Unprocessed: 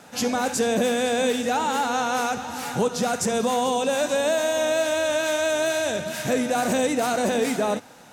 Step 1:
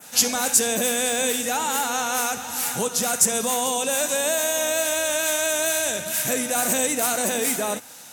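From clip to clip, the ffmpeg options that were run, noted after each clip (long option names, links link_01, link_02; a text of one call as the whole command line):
ffmpeg -i in.wav -af "adynamicequalizer=threshold=0.00562:dfrequency=4600:dqfactor=1.1:tfrequency=4600:tqfactor=1.1:attack=5:release=100:ratio=0.375:range=3.5:mode=cutabove:tftype=bell,crystalizer=i=7.5:c=0,volume=-5dB" out.wav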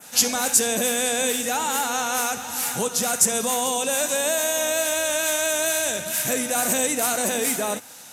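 ffmpeg -i in.wav -af "aresample=32000,aresample=44100" out.wav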